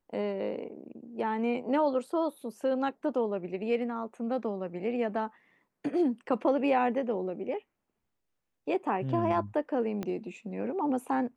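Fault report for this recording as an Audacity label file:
10.030000	10.030000	pop -21 dBFS

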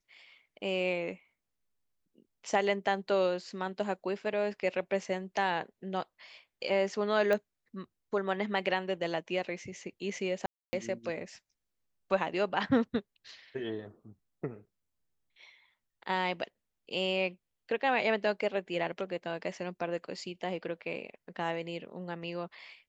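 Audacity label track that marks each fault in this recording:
7.330000	7.330000	pop -18 dBFS
10.460000	10.730000	dropout 270 ms

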